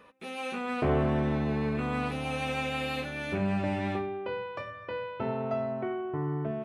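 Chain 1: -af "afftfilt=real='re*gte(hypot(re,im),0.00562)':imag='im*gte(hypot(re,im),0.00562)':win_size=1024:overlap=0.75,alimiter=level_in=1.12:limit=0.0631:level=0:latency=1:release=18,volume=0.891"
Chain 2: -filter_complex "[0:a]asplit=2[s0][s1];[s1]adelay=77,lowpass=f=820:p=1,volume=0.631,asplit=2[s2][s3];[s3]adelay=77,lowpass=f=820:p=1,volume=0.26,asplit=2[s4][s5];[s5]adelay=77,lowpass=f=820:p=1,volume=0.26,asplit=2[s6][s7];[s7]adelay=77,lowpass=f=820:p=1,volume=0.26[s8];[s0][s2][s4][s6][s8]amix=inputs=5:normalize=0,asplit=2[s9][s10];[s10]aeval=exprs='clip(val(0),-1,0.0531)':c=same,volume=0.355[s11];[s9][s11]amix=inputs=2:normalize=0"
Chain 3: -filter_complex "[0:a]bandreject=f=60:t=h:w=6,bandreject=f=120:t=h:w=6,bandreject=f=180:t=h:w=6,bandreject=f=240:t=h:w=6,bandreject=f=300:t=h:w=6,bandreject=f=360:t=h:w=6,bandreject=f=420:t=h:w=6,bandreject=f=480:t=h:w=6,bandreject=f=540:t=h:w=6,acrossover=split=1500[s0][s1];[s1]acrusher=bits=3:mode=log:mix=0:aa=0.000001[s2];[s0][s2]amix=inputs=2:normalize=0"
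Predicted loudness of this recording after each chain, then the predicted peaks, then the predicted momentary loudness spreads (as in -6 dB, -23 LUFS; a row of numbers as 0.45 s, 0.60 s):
-34.0 LUFS, -27.5 LUFS, -32.0 LUFS; -25.0 dBFS, -12.5 dBFS, -15.5 dBFS; 5 LU, 8 LU, 9 LU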